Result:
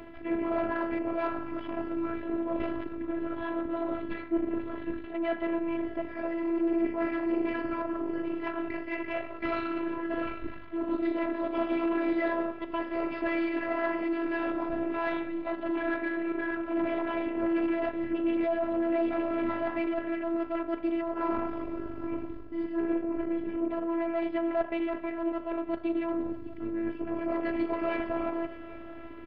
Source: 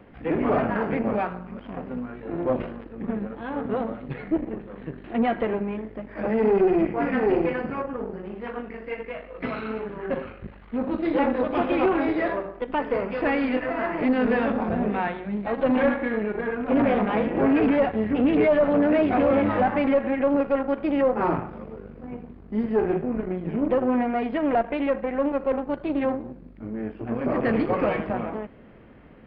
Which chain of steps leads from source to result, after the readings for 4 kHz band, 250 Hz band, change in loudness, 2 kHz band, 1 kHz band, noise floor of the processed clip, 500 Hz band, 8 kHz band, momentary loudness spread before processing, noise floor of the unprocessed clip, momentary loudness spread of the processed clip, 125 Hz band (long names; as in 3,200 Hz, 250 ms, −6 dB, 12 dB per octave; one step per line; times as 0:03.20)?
−6.0 dB, −5.0 dB, −7.0 dB, −5.5 dB, −7.5 dB, −42 dBFS, −8.0 dB, can't be measured, 14 LU, −45 dBFS, 7 LU, −15.0 dB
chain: reversed playback
downward compressor 6 to 1, threshold −32 dBFS, peak gain reduction 15 dB
reversed playback
soft clipping −22 dBFS, distortion −28 dB
phases set to zero 333 Hz
multi-tap delay 607/791 ms −18/−19.5 dB
level +7.5 dB